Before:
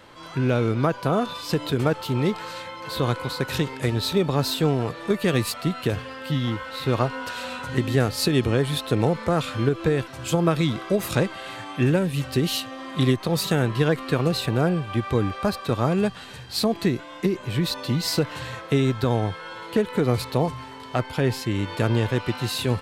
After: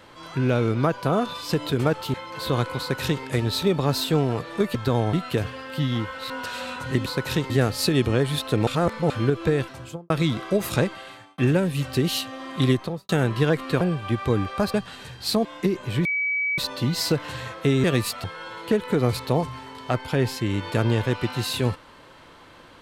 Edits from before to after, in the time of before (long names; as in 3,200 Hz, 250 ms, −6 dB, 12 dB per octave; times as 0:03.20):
0:02.14–0:02.64: remove
0:03.29–0:03.73: duplicate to 0:07.89
0:05.25–0:05.65: swap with 0:18.91–0:19.29
0:06.82–0:07.13: remove
0:09.06–0:09.49: reverse
0:10.05–0:10.49: fade out and dull
0:11.21–0:11.77: fade out
0:13.14–0:13.48: fade out and dull
0:14.20–0:14.66: remove
0:15.59–0:16.03: remove
0:16.74–0:17.05: remove
0:17.65: insert tone 2,280 Hz −21.5 dBFS 0.53 s